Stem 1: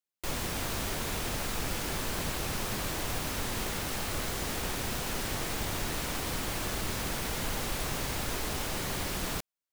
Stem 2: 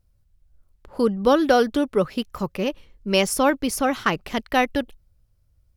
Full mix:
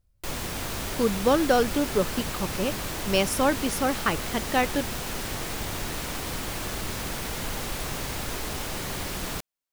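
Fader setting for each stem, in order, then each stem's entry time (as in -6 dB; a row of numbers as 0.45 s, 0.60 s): +1.5 dB, -4.0 dB; 0.00 s, 0.00 s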